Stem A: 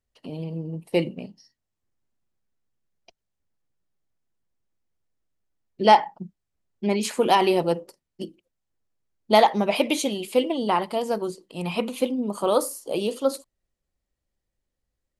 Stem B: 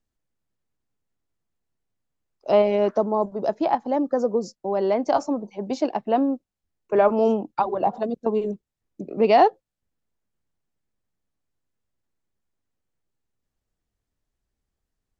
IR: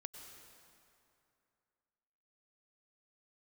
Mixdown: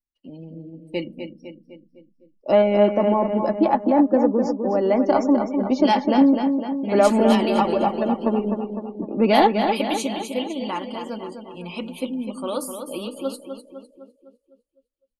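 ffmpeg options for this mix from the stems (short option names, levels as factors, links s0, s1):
-filter_complex "[0:a]volume=0.708,asplit=2[s0][s1];[s1]volume=0.422[s2];[1:a]acontrast=33,highshelf=f=3000:g=-9,volume=1.12,asplit=2[s3][s4];[s4]volume=0.473[s5];[s2][s5]amix=inputs=2:normalize=0,aecho=0:1:253|506|759|1012|1265|1518|1771|2024:1|0.56|0.314|0.176|0.0983|0.0551|0.0308|0.0173[s6];[s0][s3][s6]amix=inputs=3:normalize=0,afftdn=nr=23:nf=-45,equalizer=f=690:t=o:w=1.7:g=-6,aecho=1:1:3.5:0.46"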